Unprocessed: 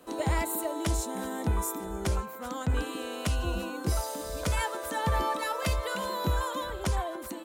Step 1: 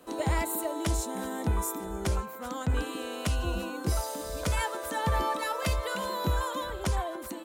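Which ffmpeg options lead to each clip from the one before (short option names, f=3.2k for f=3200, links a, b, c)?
-af anull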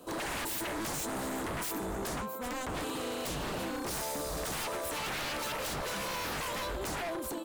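-af "equalizer=f=1.9k:t=o:w=0.74:g=-10,aeval=exprs='0.0188*(abs(mod(val(0)/0.0188+3,4)-2)-1)':c=same,volume=3.5dB"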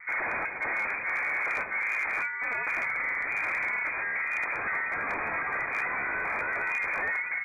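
-af "lowpass=f=2.1k:t=q:w=0.5098,lowpass=f=2.1k:t=q:w=0.6013,lowpass=f=2.1k:t=q:w=0.9,lowpass=f=2.1k:t=q:w=2.563,afreqshift=-2500,volume=29dB,asoftclip=hard,volume=-29dB,volume=6.5dB"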